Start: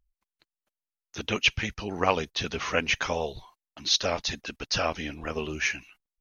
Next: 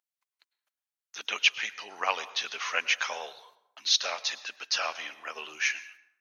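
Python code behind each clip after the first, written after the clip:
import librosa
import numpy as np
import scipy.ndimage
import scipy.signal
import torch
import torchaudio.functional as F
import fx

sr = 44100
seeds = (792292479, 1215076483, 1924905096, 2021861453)

y = scipy.signal.sosfilt(scipy.signal.butter(2, 990.0, 'highpass', fs=sr, output='sos'), x)
y = fx.rev_plate(y, sr, seeds[0], rt60_s=0.8, hf_ratio=0.6, predelay_ms=90, drr_db=16.0)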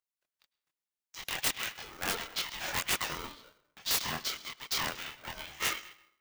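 y = (np.mod(10.0 ** (18.0 / 20.0) * x + 1.0, 2.0) - 1.0) / 10.0 ** (18.0 / 20.0)
y = fx.chorus_voices(y, sr, voices=2, hz=0.34, base_ms=24, depth_ms=2.5, mix_pct=45)
y = y * np.sign(np.sin(2.0 * np.pi * 450.0 * np.arange(len(y)) / sr))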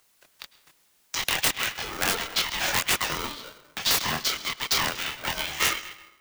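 y = fx.band_squash(x, sr, depth_pct=70)
y = F.gain(torch.from_numpy(y), 8.0).numpy()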